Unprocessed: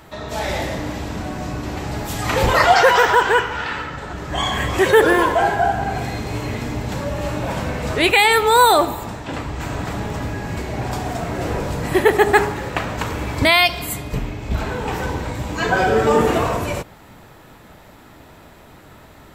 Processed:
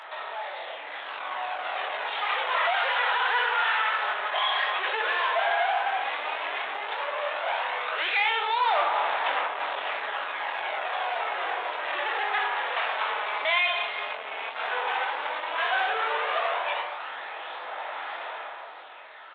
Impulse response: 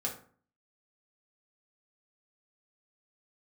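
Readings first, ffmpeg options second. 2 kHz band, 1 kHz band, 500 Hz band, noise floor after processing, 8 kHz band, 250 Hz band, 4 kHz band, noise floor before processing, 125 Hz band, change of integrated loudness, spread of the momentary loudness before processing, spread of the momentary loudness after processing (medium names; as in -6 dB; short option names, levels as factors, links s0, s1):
-5.5 dB, -6.5 dB, -14.0 dB, -40 dBFS, under -40 dB, under -30 dB, -6.0 dB, -45 dBFS, under -40 dB, -8.5 dB, 14 LU, 12 LU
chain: -filter_complex "[0:a]asplit=2[s0][s1];[1:a]atrim=start_sample=2205,adelay=51[s2];[s1][s2]afir=irnorm=-1:irlink=0,volume=0.237[s3];[s0][s3]amix=inputs=2:normalize=0,asoftclip=type=hard:threshold=0.211,acompressor=threshold=0.0447:ratio=6,asoftclip=type=tanh:threshold=0.0178,aresample=8000,aresample=44100,dynaudnorm=f=140:g=17:m=2.99,aphaser=in_gain=1:out_gain=1:delay=4.8:decay=0.32:speed=0.11:type=sinusoidal,highpass=f=680:w=0.5412,highpass=f=680:w=1.3066,asplit=2[s4][s5];[s5]adelay=22,volume=0.447[s6];[s4][s6]amix=inputs=2:normalize=0,flanger=delay=7.3:depth=6.8:regen=-84:speed=1.7:shape=triangular,volume=2.37"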